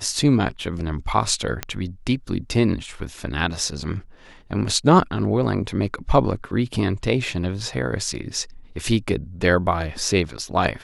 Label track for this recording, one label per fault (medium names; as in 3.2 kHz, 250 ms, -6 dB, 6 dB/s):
1.630000	1.630000	pop -8 dBFS